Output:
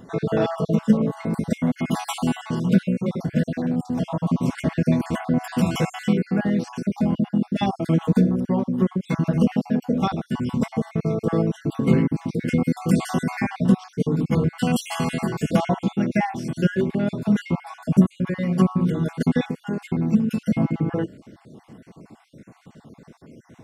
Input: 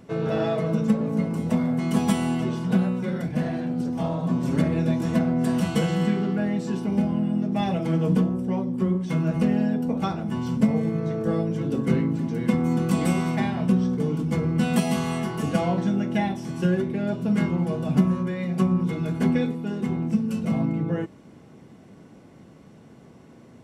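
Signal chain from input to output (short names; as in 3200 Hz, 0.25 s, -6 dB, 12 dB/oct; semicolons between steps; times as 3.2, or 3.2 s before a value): random spectral dropouts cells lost 43%; gain +4.5 dB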